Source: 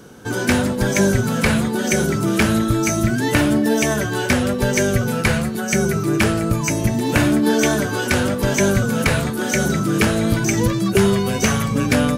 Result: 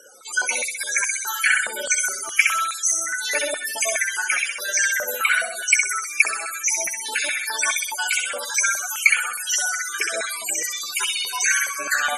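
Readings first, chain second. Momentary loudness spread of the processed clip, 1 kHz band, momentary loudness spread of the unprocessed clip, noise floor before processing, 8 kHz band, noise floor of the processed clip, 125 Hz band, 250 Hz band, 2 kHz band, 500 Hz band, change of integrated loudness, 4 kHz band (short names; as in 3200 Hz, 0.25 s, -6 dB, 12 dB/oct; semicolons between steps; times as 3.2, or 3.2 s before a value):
5 LU, -3.5 dB, 3 LU, -24 dBFS, +5.0 dB, -32 dBFS, under -40 dB, under -30 dB, +3.0 dB, -14.5 dB, -2.5 dB, 0.0 dB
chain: random spectral dropouts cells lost 43%; Chebyshev low-pass 12000 Hz, order 4; tilt +4.5 dB/oct; in parallel at -1.5 dB: vocal rider within 4 dB 0.5 s; on the sum: soft clip -2.5 dBFS, distortion -16 dB; on a send: flutter echo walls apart 11 m, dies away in 0.91 s; on the sum: loudest bins only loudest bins 64; stepped high-pass 4.8 Hz 610–2500 Hz; gain -9.5 dB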